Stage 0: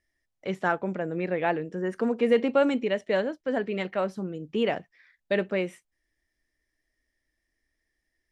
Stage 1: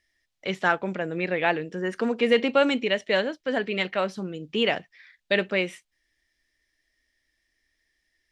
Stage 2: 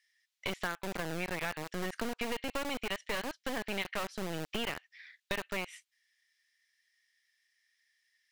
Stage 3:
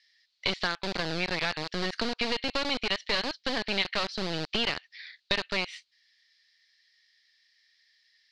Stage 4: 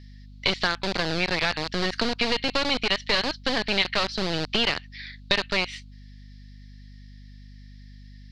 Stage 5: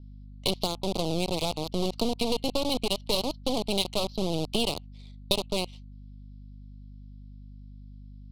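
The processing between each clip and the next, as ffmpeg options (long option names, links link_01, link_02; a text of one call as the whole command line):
ffmpeg -i in.wav -af "equalizer=frequency=3600:width=0.54:gain=11" out.wav
ffmpeg -i in.wav -filter_complex "[0:a]acompressor=threshold=-31dB:ratio=10,acrossover=split=1200[link_01][link_02];[link_01]acrusher=bits=3:dc=4:mix=0:aa=0.000001[link_03];[link_03][link_02]amix=inputs=2:normalize=0" out.wav
ffmpeg -i in.wav -af "lowpass=frequency=4400:width_type=q:width=5,volume=4.5dB" out.wav
ffmpeg -i in.wav -af "aeval=exprs='val(0)+0.00355*(sin(2*PI*50*n/s)+sin(2*PI*2*50*n/s)/2+sin(2*PI*3*50*n/s)/3+sin(2*PI*4*50*n/s)/4+sin(2*PI*5*50*n/s)/5)':channel_layout=same,volume=5dB" out.wav
ffmpeg -i in.wav -af "adynamicsmooth=sensitivity=2:basefreq=1500,asuperstop=centerf=1700:order=4:qfactor=0.68" out.wav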